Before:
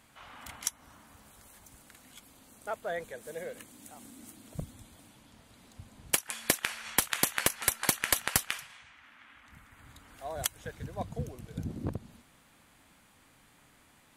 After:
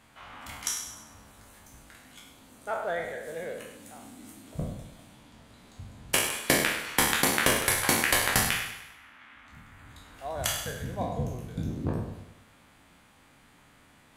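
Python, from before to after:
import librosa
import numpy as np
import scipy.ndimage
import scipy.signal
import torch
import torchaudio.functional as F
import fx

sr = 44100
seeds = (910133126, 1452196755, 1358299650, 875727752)

y = fx.spec_trails(x, sr, decay_s=0.72)
y = fx.high_shelf(y, sr, hz=5700.0, db=-7.0)
y = fx.echo_feedback(y, sr, ms=100, feedback_pct=48, wet_db=-12.0)
y = y * librosa.db_to_amplitude(2.0)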